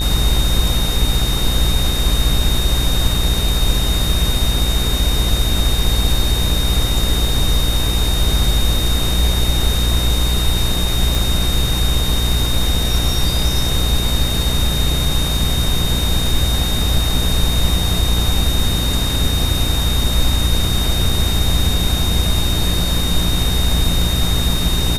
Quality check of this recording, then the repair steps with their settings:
mains buzz 60 Hz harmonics 28 −20 dBFS
whistle 3,700 Hz −22 dBFS
0:11.15: click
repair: click removal
notch filter 3,700 Hz, Q 30
hum removal 60 Hz, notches 28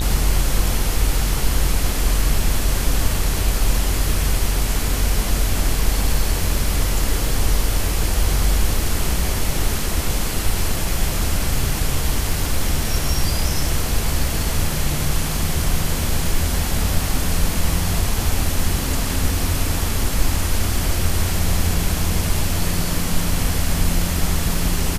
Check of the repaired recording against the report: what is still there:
none of them is left

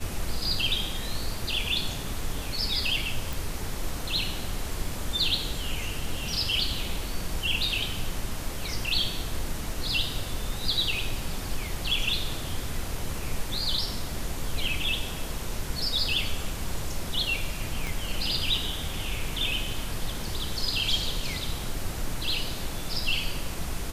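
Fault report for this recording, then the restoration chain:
0:03.33: click
0:17.87: click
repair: click removal

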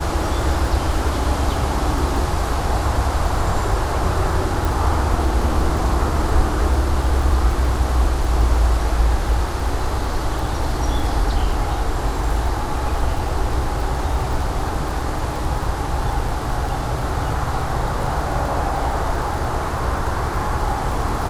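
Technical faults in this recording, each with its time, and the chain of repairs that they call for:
surface crackle 29 per second −26 dBFS
0:04.65: click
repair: click removal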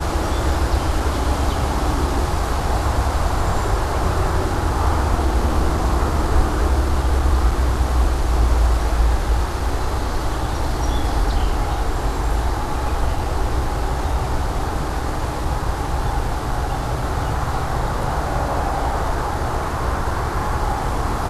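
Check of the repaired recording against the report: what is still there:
none of them is left

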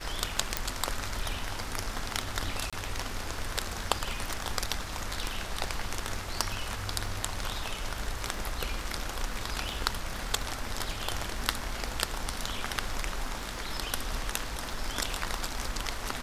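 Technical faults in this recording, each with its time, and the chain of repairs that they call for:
surface crackle 21 per second −38 dBFS
0:00.57: click −8 dBFS
0:02.70–0:02.73: drop-out 26 ms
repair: click removal
repair the gap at 0:02.70, 26 ms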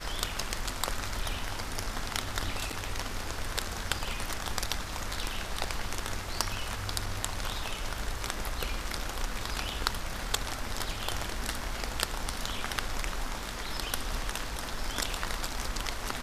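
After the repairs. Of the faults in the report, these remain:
none of them is left

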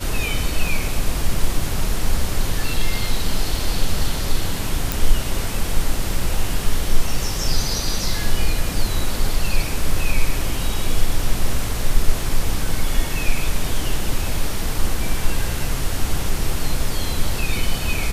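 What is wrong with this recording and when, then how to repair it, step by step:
0:00.67: drop-out 2.8 ms
0:04.92: click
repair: click removal
repair the gap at 0:00.67, 2.8 ms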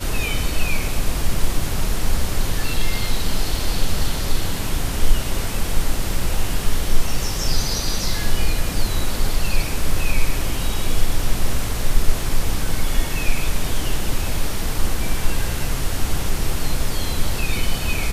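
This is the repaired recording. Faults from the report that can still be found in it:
none of them is left

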